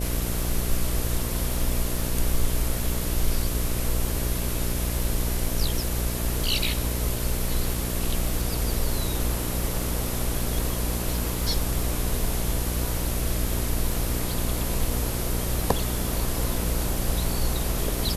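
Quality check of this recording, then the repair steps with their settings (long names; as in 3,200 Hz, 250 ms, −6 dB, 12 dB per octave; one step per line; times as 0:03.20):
mains buzz 60 Hz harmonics 11 −29 dBFS
surface crackle 45 per second −32 dBFS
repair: click removal
hum removal 60 Hz, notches 11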